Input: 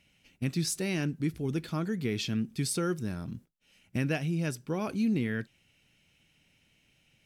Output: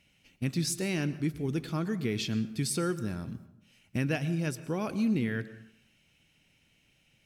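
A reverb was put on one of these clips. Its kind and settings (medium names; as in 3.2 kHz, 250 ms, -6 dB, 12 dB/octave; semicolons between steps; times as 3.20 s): plate-style reverb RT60 0.78 s, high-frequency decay 0.6×, pre-delay 100 ms, DRR 14.5 dB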